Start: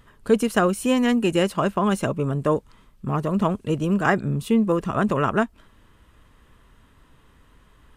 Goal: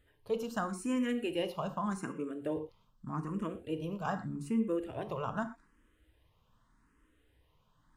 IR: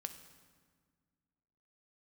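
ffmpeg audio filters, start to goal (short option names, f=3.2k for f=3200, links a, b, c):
-filter_complex "[0:a]asettb=1/sr,asplit=3[a][b][c];[a]atrim=end=1.984[d];[b]atrim=start=1.98:end=2.57,asetpts=PTS-STARTPTS,afade=t=in:d=0.004:c=qsin,afade=t=out:st=0.586:d=0.004:c=qsin,highpass=120[e];[c]atrim=start=2.566[f];[d][e]acrossfade=d=0.004:c1=hsin:c2=qsin[g];[g][f]acrossfade=d=0.004:c1=qsin:c2=hsin[h];[1:a]atrim=start_sample=2205,afade=t=out:st=0.28:d=0.01,atrim=end_sample=12789,asetrate=79380,aresample=44100[i];[h][i]afir=irnorm=-1:irlink=0,asplit=2[j][k];[k]afreqshift=0.83[l];[j][l]amix=inputs=2:normalize=1,volume=-3.5dB"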